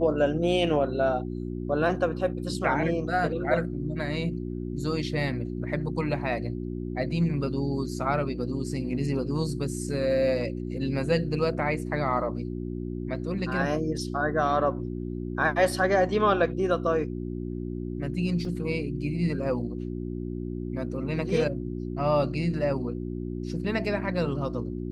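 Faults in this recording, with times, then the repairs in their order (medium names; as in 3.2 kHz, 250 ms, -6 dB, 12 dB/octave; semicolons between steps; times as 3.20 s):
hum 60 Hz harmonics 6 -33 dBFS
18.45 s: dropout 2.3 ms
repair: de-hum 60 Hz, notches 6; interpolate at 18.45 s, 2.3 ms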